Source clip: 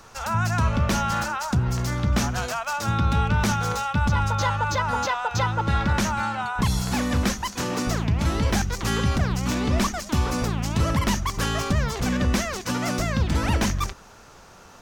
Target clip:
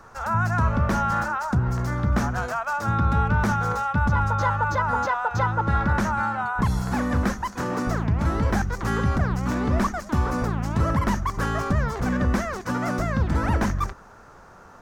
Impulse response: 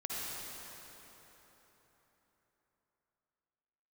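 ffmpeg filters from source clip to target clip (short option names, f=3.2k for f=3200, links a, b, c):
-af "highshelf=f=2.1k:t=q:w=1.5:g=-9"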